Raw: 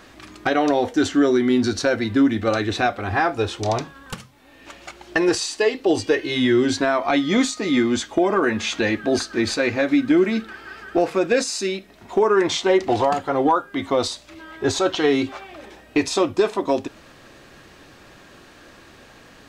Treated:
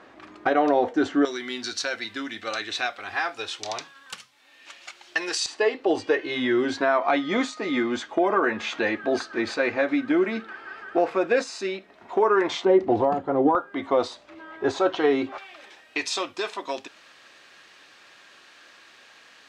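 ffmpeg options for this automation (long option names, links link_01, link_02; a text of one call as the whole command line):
ffmpeg -i in.wav -af "asetnsamples=nb_out_samples=441:pad=0,asendcmd='1.25 bandpass f 3900;5.46 bandpass f 1000;12.65 bandpass f 310;13.55 bandpass f 780;15.38 bandpass f 3100',bandpass=frequency=730:width_type=q:width=0.58:csg=0" out.wav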